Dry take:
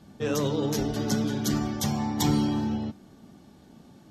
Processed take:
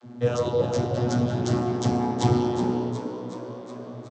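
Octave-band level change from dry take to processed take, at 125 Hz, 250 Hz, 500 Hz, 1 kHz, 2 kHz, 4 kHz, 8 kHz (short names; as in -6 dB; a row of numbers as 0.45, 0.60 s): +4.5, +0.5, +6.5, +5.0, -0.5, -3.5, -5.5 dB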